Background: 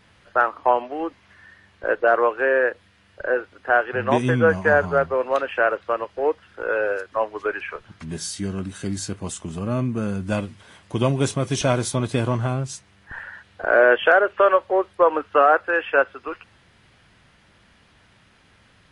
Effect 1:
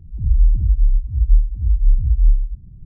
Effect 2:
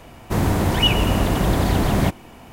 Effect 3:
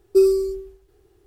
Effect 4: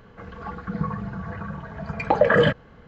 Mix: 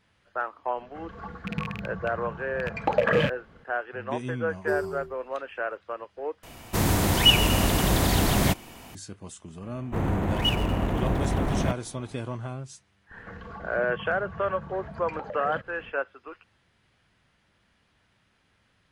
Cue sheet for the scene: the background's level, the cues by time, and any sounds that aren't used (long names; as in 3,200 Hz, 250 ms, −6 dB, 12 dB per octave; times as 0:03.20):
background −11.5 dB
0:00.77: mix in 4 −5 dB + loose part that buzzes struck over −27 dBFS, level −17 dBFS
0:04.52: mix in 3 −14.5 dB
0:06.43: overwrite with 2 −4.5 dB + high-shelf EQ 2,400 Hz +10 dB
0:09.62: mix in 2 −7 dB + adaptive Wiener filter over 9 samples
0:13.09: mix in 4 −0.5 dB, fades 0.10 s + downward compressor 4 to 1, threshold −37 dBFS
not used: 1